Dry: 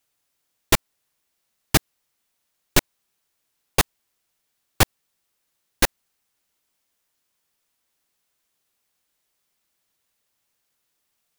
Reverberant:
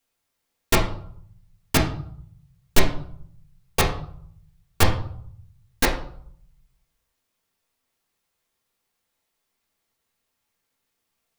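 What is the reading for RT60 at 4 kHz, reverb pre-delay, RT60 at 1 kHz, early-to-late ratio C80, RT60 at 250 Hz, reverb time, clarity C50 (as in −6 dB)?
0.40 s, 4 ms, 0.60 s, 11.5 dB, 0.80 s, 0.60 s, 7.5 dB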